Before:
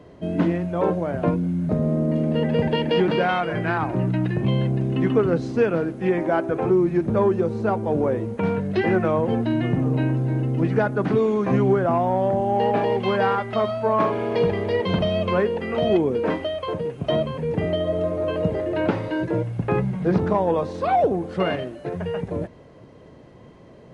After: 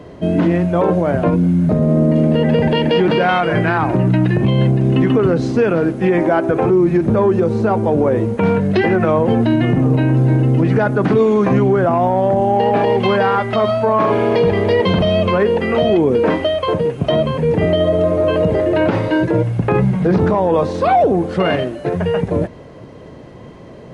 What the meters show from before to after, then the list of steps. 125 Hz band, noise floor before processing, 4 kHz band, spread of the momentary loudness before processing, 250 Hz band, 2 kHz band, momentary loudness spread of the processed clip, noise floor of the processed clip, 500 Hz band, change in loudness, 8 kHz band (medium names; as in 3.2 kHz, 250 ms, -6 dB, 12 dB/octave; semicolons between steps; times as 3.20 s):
+8.0 dB, -46 dBFS, +7.5 dB, 5 LU, +7.5 dB, +7.5 dB, 3 LU, -36 dBFS, +7.0 dB, +7.5 dB, no reading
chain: loudness maximiser +15 dB; trim -5 dB